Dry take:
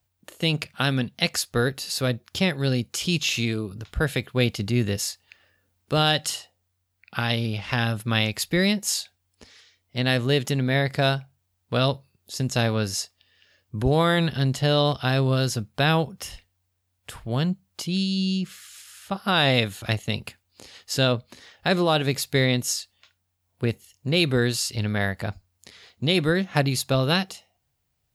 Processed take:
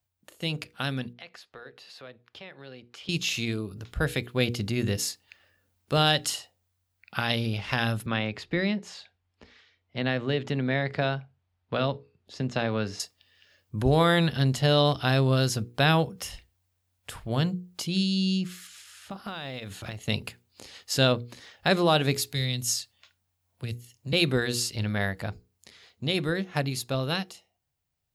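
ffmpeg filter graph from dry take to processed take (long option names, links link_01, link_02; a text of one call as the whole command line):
ffmpeg -i in.wav -filter_complex "[0:a]asettb=1/sr,asplit=3[link_01][link_02][link_03];[link_01]atrim=end=1.134[link_04];[link_02]atrim=start=1.13:end=3.09,asetpts=PTS-STARTPTS,afade=type=in:duration=0.004:curve=qsin,afade=type=out:start_time=1.956:duration=0.004:curve=qsin,acrossover=split=360 3700:gain=0.224 1 0.0794[link_05][link_06][link_07];[link_05][link_06][link_07]amix=inputs=3:normalize=0,acompressor=threshold=-39dB:ratio=2.5:attack=3.2:release=140:knee=1:detection=peak[link_08];[link_03]atrim=start=3.086[link_09];[link_04][link_08]acrossfade=duration=0.004:curve1=hsin:curve2=qsin[link_10];[link_10][link_09]acrossfade=duration=0.004:curve1=qsin:curve2=hsin,asettb=1/sr,asplit=3[link_11][link_12][link_13];[link_11]atrim=end=8.064[link_14];[link_12]atrim=start=8.06:end=13,asetpts=PTS-STARTPTS,afade=type=in:duration=0.004:curve=qsin,afade=type=out:start_time=4.936:duration=0.004:curve=qsin,acrossover=split=150|2200[link_15][link_16][link_17];[link_15]acompressor=threshold=-37dB:ratio=4[link_18];[link_16]acompressor=threshold=-22dB:ratio=4[link_19];[link_17]acompressor=threshold=-29dB:ratio=4[link_20];[link_18][link_19][link_20]amix=inputs=3:normalize=0,lowpass=3000[link_21];[link_13]atrim=start=12.996[link_22];[link_14][link_21]acrossfade=duration=0.004:curve1=hsin:curve2=qsin[link_23];[link_23][link_22]acrossfade=duration=0.004:curve1=qsin:curve2=hsin,asettb=1/sr,asplit=3[link_24][link_25][link_26];[link_24]atrim=end=18.674[link_27];[link_25]atrim=start=18.67:end=20.02,asetpts=PTS-STARTPTS,afade=type=in:duration=0.004:curve=qsin,afade=type=out:start_time=1.346:duration=0.004:curve=qsin,acompressor=threshold=-31dB:ratio=16:attack=3.2:release=140:knee=1:detection=peak,highshelf=frequency=10000:gain=-11.5,acrusher=bits=9:mode=log:mix=0:aa=0.000001[link_28];[link_26]atrim=start=20.016[link_29];[link_27][link_28]acrossfade=duration=0.004:curve1=hsin:curve2=qsin[link_30];[link_30][link_29]acrossfade=duration=0.004:curve1=qsin:curve2=hsin,asettb=1/sr,asplit=3[link_31][link_32][link_33];[link_31]atrim=end=22.154[link_34];[link_32]atrim=start=22.15:end=24.13,asetpts=PTS-STARTPTS,afade=type=in:duration=0.004:curve=qsin,afade=type=out:start_time=1.976:duration=0.004:curve=qsin,highpass=50,acrossover=split=150|3000[link_35][link_36][link_37];[link_36]acompressor=threshold=-48dB:ratio=2:attack=3.2:release=140:knee=2.83:detection=peak[link_38];[link_35][link_38][link_37]amix=inputs=3:normalize=0[link_39];[link_33]atrim=start=24.126[link_40];[link_34][link_39]acrossfade=duration=0.004:curve1=hsin:curve2=qsin[link_41];[link_41][link_40]acrossfade=duration=0.004:curve1=qsin:curve2=hsin,bandreject=frequency=60:width_type=h:width=6,bandreject=frequency=120:width_type=h:width=6,bandreject=frequency=180:width_type=h:width=6,bandreject=frequency=240:width_type=h:width=6,bandreject=frequency=300:width_type=h:width=6,bandreject=frequency=360:width_type=h:width=6,bandreject=frequency=420:width_type=h:width=6,bandreject=frequency=480:width_type=h:width=6,dynaudnorm=framelen=400:gausssize=17:maxgain=11.5dB,volume=-7dB" out.wav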